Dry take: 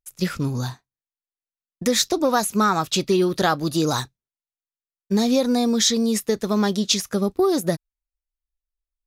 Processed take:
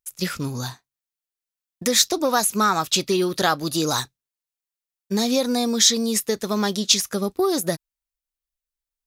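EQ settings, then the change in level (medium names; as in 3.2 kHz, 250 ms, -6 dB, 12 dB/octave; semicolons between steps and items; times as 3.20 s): tilt EQ +1.5 dB/octave; 0.0 dB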